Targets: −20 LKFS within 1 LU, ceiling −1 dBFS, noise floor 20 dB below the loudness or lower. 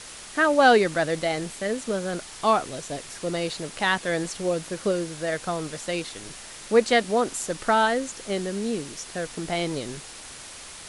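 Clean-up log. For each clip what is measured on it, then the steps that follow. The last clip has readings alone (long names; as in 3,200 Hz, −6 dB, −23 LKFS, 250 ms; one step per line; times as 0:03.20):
background noise floor −42 dBFS; target noise floor −45 dBFS; integrated loudness −25.0 LKFS; sample peak −5.5 dBFS; target loudness −20.0 LKFS
→ broadband denoise 6 dB, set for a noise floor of −42 dBFS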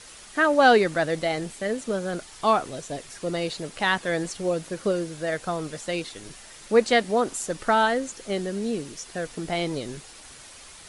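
background noise floor −46 dBFS; integrated loudness −25.5 LKFS; sample peak −5.5 dBFS; target loudness −20.0 LKFS
→ level +5.5 dB
brickwall limiter −1 dBFS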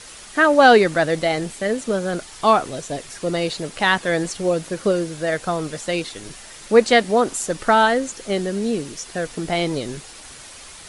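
integrated loudness −20.0 LKFS; sample peak −1.0 dBFS; background noise floor −41 dBFS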